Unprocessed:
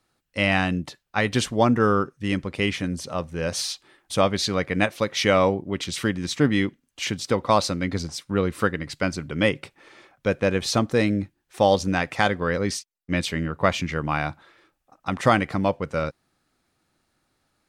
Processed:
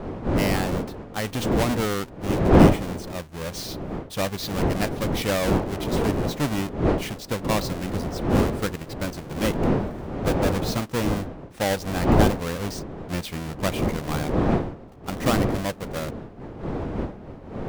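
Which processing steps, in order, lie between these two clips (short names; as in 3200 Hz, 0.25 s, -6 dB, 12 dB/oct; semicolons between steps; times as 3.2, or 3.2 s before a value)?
half-waves squared off; wind noise 400 Hz -16 dBFS; gain -9.5 dB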